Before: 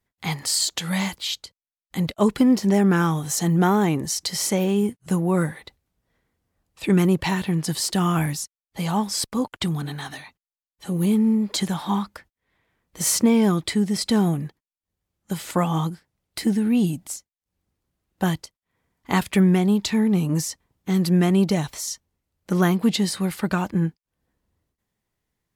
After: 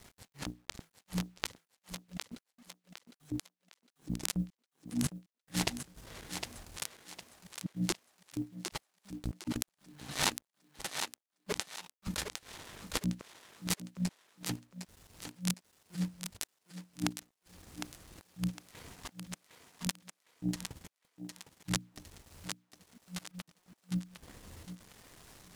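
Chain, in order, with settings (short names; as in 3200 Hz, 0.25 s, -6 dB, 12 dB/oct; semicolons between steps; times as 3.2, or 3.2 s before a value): switching dead time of 0.28 ms; LPF 11000 Hz 12 dB/oct; high shelf 3000 Hz +9 dB; notches 60/120/180/240/300 Hz; negative-ratio compressor -48 dBFS, ratio -0.5; bit-crush 11-bit; transient shaper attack -6 dB, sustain -10 dB; thinning echo 0.758 s, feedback 36%, high-pass 370 Hz, level -6 dB; gain +5 dB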